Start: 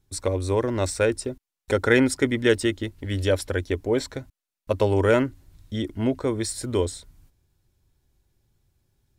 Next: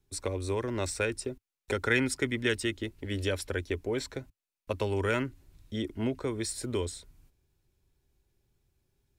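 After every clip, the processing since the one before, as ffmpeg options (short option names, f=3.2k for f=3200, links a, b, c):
-filter_complex "[0:a]equalizer=f=100:t=o:w=0.33:g=-4,equalizer=f=400:t=o:w=0.33:g=5,equalizer=f=2.5k:t=o:w=0.33:g=4,acrossover=split=220|960[a][b][c];[b]acompressor=threshold=-27dB:ratio=6[d];[a][d][c]amix=inputs=3:normalize=0,volume=-5dB"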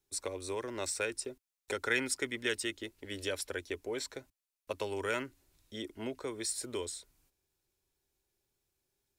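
-af "bass=f=250:g=-12,treble=f=4k:g=5,volume=-4dB"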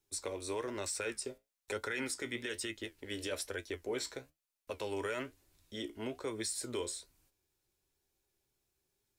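-af "alimiter=level_in=4dB:limit=-24dB:level=0:latency=1:release=27,volume=-4dB,flanger=delay=9.1:depth=8.3:regen=58:speed=1.1:shape=sinusoidal,volume=4.5dB"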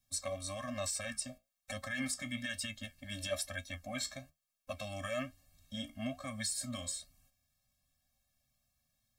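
-af "afftfilt=real='re*eq(mod(floor(b*sr/1024/260),2),0)':imag='im*eq(mod(floor(b*sr/1024/260),2),0)':win_size=1024:overlap=0.75,volume=5dB"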